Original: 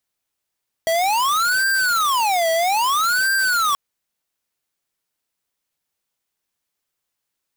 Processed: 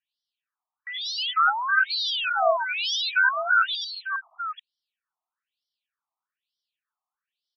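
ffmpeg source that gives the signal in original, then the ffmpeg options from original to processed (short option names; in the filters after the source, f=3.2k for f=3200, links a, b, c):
-f lavfi -i "aevalsrc='0.119*(2*lt(mod((1116.5*t-463.5/(2*PI*0.61)*sin(2*PI*0.61*t)),1),0.5)-1)':d=2.88:s=44100"
-filter_complex "[0:a]bandreject=f=2.1k:w=5.1,asplit=2[a][b];[b]aecho=0:1:93|410|843:0.562|0.376|0.316[c];[a][c]amix=inputs=2:normalize=0,afftfilt=real='re*between(b*sr/1024,890*pow(4200/890,0.5+0.5*sin(2*PI*1.1*pts/sr))/1.41,890*pow(4200/890,0.5+0.5*sin(2*PI*1.1*pts/sr))*1.41)':imag='im*between(b*sr/1024,890*pow(4200/890,0.5+0.5*sin(2*PI*1.1*pts/sr))/1.41,890*pow(4200/890,0.5+0.5*sin(2*PI*1.1*pts/sr))*1.41)':win_size=1024:overlap=0.75"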